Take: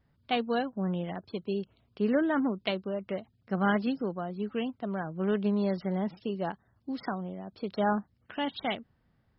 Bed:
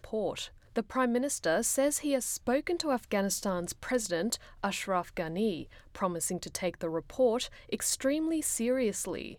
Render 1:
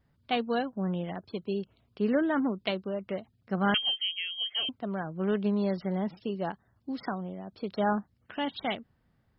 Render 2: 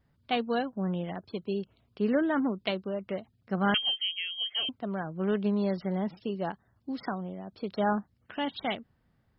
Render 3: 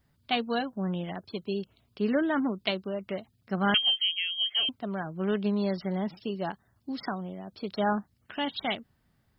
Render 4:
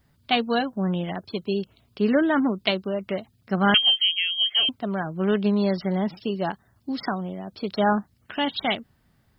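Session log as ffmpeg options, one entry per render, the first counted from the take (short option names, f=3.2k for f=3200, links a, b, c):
-filter_complex "[0:a]asettb=1/sr,asplit=3[a][b][c];[a]atrim=end=3.744[d];[b]atrim=start=3.74:end=4.69,asetpts=PTS-STARTPTS,afade=t=in:d=0.004:c=qsin,afade=t=out:st=0.946:d=0.004:c=qsin,lowpass=f=2.9k:t=q:w=0.5098,lowpass=f=2.9k:t=q:w=0.6013,lowpass=f=2.9k:t=q:w=0.9,lowpass=f=2.9k:t=q:w=2.563,afreqshift=-3400[e];[c]atrim=start=4.686[f];[d][e]acrossfade=d=0.004:c1=hsin:c2=qsin[g];[g][f]acrossfade=d=0.004:c1=qsin:c2=hsin"
-af anull
-af "highshelf=f=3.7k:g=10,bandreject=f=500:w=13"
-af "volume=6dB"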